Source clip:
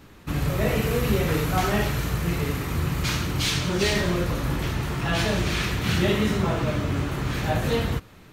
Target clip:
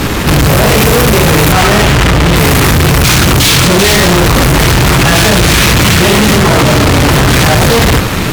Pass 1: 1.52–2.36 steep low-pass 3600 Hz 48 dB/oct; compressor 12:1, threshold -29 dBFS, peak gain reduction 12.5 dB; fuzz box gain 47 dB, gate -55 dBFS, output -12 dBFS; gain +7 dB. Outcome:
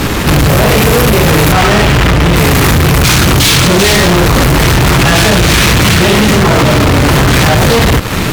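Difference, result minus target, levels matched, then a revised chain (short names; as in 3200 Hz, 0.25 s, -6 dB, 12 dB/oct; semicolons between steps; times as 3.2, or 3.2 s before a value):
compressor: peak gain reduction +12.5 dB
1.52–2.36 steep low-pass 3600 Hz 48 dB/oct; fuzz box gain 47 dB, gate -55 dBFS, output -12 dBFS; gain +7 dB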